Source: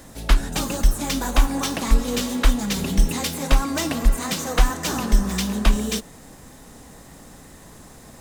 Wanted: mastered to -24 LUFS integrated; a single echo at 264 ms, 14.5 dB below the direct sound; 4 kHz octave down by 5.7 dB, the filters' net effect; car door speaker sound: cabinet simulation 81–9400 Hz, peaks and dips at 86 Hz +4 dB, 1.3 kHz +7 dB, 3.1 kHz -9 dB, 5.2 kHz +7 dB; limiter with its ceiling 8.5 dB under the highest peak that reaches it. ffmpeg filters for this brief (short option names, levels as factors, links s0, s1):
-af "equalizer=f=4000:t=o:g=-9,alimiter=limit=0.237:level=0:latency=1,highpass=81,equalizer=f=86:t=q:w=4:g=4,equalizer=f=1300:t=q:w=4:g=7,equalizer=f=3100:t=q:w=4:g=-9,equalizer=f=5200:t=q:w=4:g=7,lowpass=f=9400:w=0.5412,lowpass=f=9400:w=1.3066,aecho=1:1:264:0.188,volume=1.33"